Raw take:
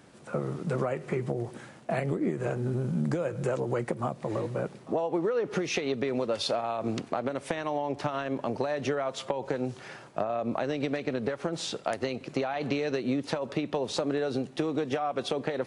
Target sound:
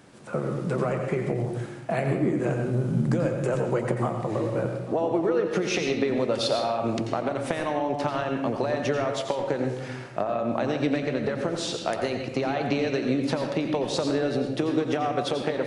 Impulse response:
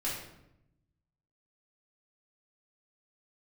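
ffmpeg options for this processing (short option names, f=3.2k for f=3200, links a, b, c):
-filter_complex "[0:a]asplit=2[a][b];[1:a]atrim=start_sample=2205,adelay=86[c];[b][c]afir=irnorm=-1:irlink=0,volume=-8.5dB[d];[a][d]amix=inputs=2:normalize=0,volume=2.5dB"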